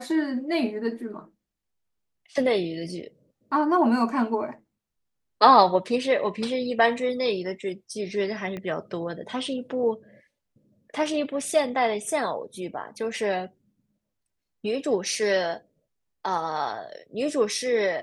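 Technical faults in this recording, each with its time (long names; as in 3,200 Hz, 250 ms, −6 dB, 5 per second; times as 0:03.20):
0:08.57: click −22 dBFS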